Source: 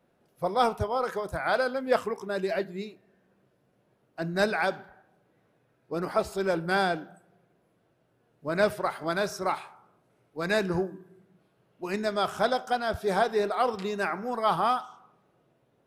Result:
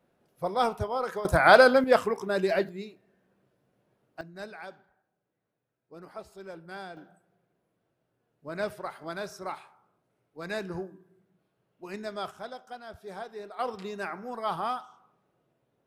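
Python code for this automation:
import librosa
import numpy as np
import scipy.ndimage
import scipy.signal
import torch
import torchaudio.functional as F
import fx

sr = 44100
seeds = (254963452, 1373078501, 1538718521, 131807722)

y = fx.gain(x, sr, db=fx.steps((0.0, -2.0), (1.25, 10.0), (1.84, 3.0), (2.69, -3.0), (4.21, -16.0), (6.97, -8.0), (12.31, -15.0), (13.59, -6.0)))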